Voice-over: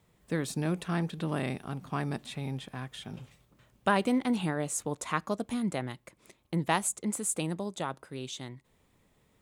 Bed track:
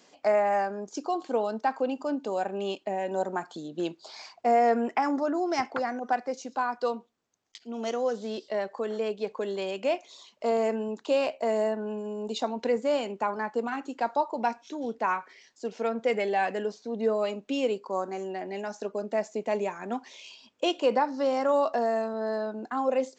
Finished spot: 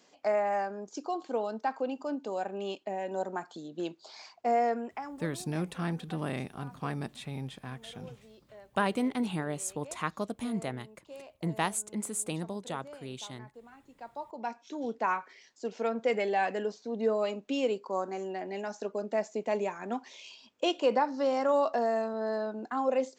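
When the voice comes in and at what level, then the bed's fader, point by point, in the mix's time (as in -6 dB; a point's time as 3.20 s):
4.90 s, -2.5 dB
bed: 4.61 s -4.5 dB
5.41 s -22 dB
13.80 s -22 dB
14.78 s -2 dB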